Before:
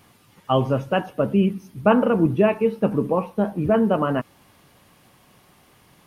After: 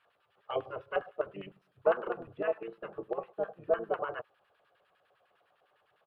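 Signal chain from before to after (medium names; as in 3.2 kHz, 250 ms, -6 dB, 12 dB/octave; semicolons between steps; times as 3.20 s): LFO band-pass square 9.9 Hz 780–1800 Hz; static phaser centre 1.4 kHz, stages 8; harmony voices -5 st -4 dB; trim -4.5 dB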